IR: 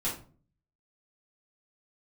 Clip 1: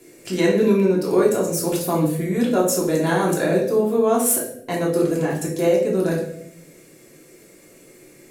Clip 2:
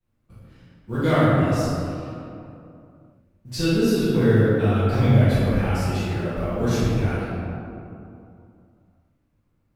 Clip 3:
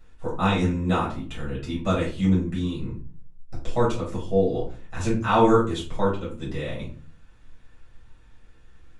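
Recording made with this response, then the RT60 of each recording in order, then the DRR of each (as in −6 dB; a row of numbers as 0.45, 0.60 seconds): 3; 0.75, 2.7, 0.40 seconds; −4.0, −16.5, −8.0 decibels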